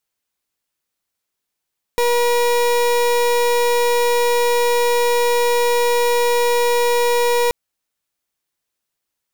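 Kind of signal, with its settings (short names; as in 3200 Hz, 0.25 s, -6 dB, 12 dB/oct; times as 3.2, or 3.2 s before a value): pulse 480 Hz, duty 31% -16 dBFS 5.53 s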